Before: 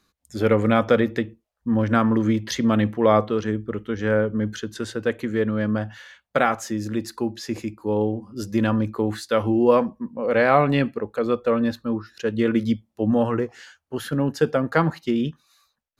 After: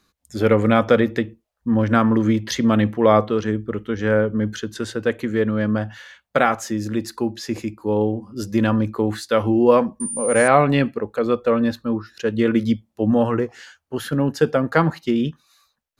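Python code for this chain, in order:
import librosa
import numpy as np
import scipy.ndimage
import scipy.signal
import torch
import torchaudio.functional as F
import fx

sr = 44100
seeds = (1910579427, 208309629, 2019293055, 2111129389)

y = fx.pwm(x, sr, carrier_hz=9200.0, at=(10.0, 10.48))
y = y * librosa.db_to_amplitude(2.5)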